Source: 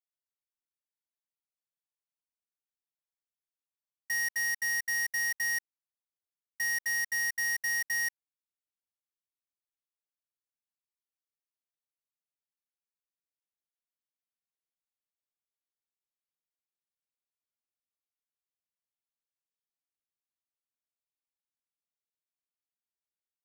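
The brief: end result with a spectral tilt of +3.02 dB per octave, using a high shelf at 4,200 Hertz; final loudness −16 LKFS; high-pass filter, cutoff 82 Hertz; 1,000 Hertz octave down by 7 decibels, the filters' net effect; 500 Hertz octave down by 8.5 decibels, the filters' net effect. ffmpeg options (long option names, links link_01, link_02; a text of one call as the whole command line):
ffmpeg -i in.wav -af "highpass=82,equalizer=frequency=500:width_type=o:gain=-8,equalizer=frequency=1000:width_type=o:gain=-6,highshelf=frequency=4200:gain=4.5,volume=13dB" out.wav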